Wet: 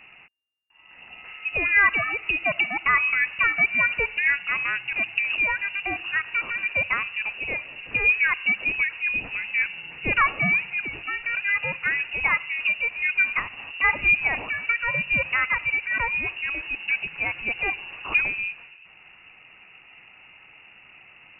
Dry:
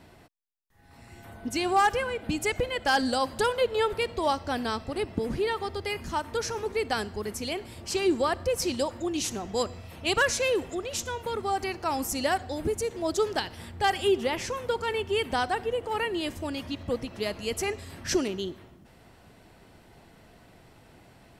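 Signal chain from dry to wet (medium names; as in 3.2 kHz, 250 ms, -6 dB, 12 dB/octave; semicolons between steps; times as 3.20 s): frequency inversion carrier 2.8 kHz; trim +4 dB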